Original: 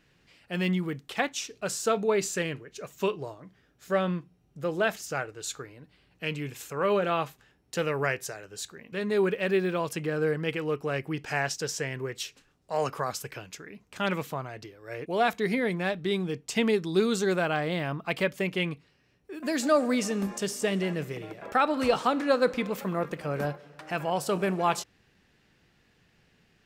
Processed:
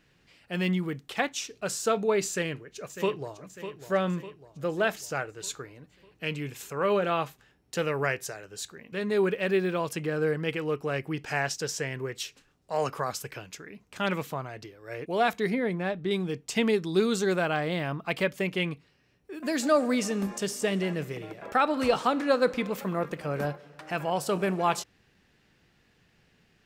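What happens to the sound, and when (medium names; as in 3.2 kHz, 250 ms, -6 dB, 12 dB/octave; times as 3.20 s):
2.29–3.41 s: echo throw 600 ms, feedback 55%, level -11 dB
15.50–16.11 s: treble shelf 2.3 kHz -9 dB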